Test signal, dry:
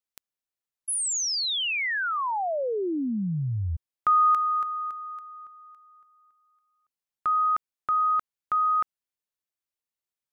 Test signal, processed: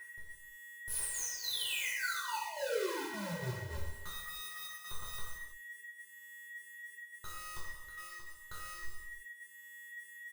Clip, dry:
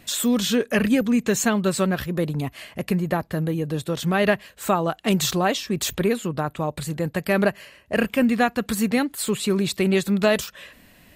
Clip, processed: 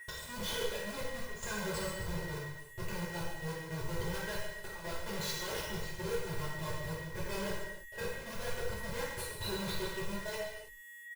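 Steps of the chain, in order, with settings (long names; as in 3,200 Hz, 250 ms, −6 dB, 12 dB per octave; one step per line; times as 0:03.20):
spectral dynamics exaggerated over time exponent 1.5
camcorder AGC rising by 12 dB per second
noise reduction from a noise print of the clip's start 10 dB
parametric band 1,900 Hz +3 dB 2.2 octaves
comparator with hysteresis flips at −32.5 dBFS
brickwall limiter −27.5 dBFS
output level in coarse steps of 24 dB
steady tone 1,900 Hz −53 dBFS
log-companded quantiser 6 bits
gate pattern "x..xxxxx.xx." 158 BPM −12 dB
comb filter 2 ms, depth 79%
reverb whose tail is shaped and stops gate 360 ms falling, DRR −7.5 dB
level +2 dB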